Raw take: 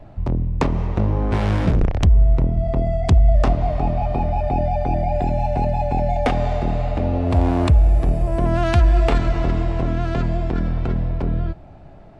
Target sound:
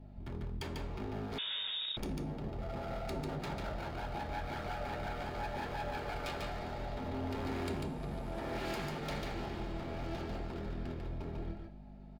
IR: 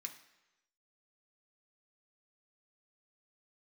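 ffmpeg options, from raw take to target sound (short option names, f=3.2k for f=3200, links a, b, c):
-filter_complex "[0:a]equalizer=f=750:w=1.6:g=3.5,aeval=exprs='0.141*(abs(mod(val(0)/0.141+3,4)-2)-1)':c=same,aeval=exprs='val(0)+0.0282*(sin(2*PI*50*n/s)+sin(2*PI*2*50*n/s)/2+sin(2*PI*3*50*n/s)/3+sin(2*PI*4*50*n/s)/4+sin(2*PI*5*50*n/s)/5)':c=same,aecho=1:1:145:0.668[a];[1:a]atrim=start_sample=2205,asetrate=83790,aresample=44100[b];[a][b]afir=irnorm=-1:irlink=0,asettb=1/sr,asplit=3[c][d][e];[c]atrim=end=1.384[f];[d]atrim=start=1.38:end=1.97,asetpts=PTS-STARTPTS,afade=t=in:d=0.004:c=qsin,afade=t=out:st=0.586:d=0.004:c=qsin,lowpass=f=3.2k:t=q:w=0.5098,lowpass=f=3.2k:t=q:w=0.6013,lowpass=f=3.2k:t=q:w=0.9,lowpass=f=3.2k:t=q:w=2.563,afreqshift=-3800[g];[e]atrim=start=1.966[h];[f][g]acrossfade=d=0.004:c1=hsin:c2=qsin[i];[i][h]acrossfade=d=0.004:c1=qsin:c2=hsin,volume=-4.5dB"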